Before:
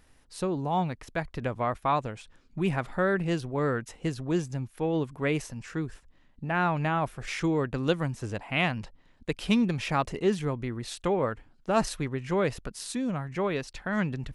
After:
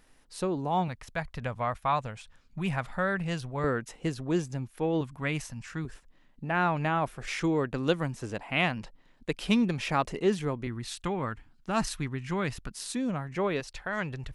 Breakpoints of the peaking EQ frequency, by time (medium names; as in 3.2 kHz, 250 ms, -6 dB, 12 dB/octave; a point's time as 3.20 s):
peaking EQ -11 dB 0.96 oct
79 Hz
from 0.88 s 340 Hz
from 3.64 s 62 Hz
from 5.01 s 420 Hz
from 5.85 s 75 Hz
from 10.67 s 510 Hz
from 12.75 s 66 Hz
from 13.60 s 220 Hz